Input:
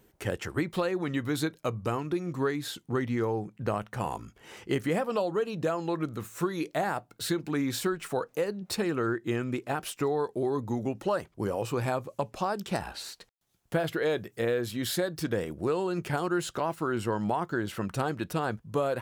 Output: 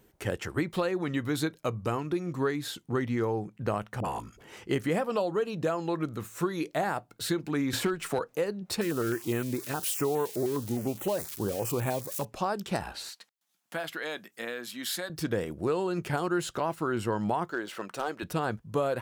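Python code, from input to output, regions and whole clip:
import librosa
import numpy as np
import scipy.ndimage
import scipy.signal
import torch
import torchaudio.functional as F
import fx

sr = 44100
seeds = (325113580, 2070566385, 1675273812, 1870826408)

y = fx.chain(x, sr, fx.dispersion(late='highs', ms=45.0, hz=550.0),
    fx.pre_swell(db_per_s=43.0), at=(4.0, 4.53))
y = fx.chain(y, sr, fx.overload_stage(gain_db=21.0),
    fx.band_squash(depth_pct=70), at=(7.73, 8.19))
y = fx.chain(y, sr, fx.crossing_spikes(level_db=-27.5),
    fx.filter_held_notch(hz=9.7, low_hz=760.0, high_hz=4900.0), at=(8.81, 12.25))
y = fx.chain(y, sr, fx.highpass(hz=230.0, slope=24),
    fx.peak_eq(hz=410.0, db=-14.0, octaves=1.1), at=(13.09, 15.1))
y = fx.chain(y, sr, fx.median_filter(points=3),
    fx.highpass(hz=380.0, slope=12),
    fx.clip_hard(threshold_db=-22.0), at=(17.5, 18.23))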